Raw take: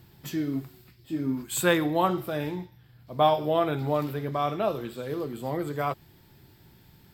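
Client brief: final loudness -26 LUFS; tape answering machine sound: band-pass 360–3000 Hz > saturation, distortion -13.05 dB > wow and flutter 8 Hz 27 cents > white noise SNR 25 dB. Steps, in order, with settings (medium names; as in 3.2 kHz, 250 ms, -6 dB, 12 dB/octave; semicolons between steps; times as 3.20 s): band-pass 360–3000 Hz; saturation -19 dBFS; wow and flutter 8 Hz 27 cents; white noise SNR 25 dB; trim +6 dB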